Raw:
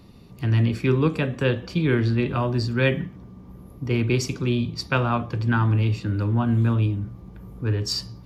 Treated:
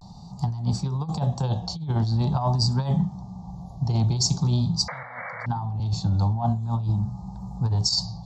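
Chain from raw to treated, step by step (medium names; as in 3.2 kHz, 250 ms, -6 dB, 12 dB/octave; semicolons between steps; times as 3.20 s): FFT filter 110 Hz 0 dB, 170 Hz +7 dB, 280 Hz -14 dB, 500 Hz -12 dB, 800 Hz +15 dB, 1.5 kHz -18 dB, 2.5 kHz -25 dB, 4.1 kHz +5 dB, 7.3 kHz +8 dB, 11 kHz -19 dB; vibrato 0.45 Hz 60 cents; 4.88–5.46 s: painted sound noise 470–2300 Hz -16 dBFS; compressor with a negative ratio -23 dBFS, ratio -0.5; 5.03–5.80 s: three bands expanded up and down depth 40%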